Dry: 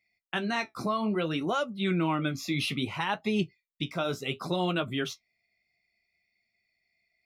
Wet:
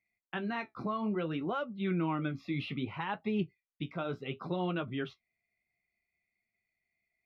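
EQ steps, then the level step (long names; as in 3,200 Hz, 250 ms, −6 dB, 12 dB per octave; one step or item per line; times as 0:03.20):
high-frequency loss of the air 390 metres
parametric band 640 Hz −3 dB 0.29 octaves
−3.5 dB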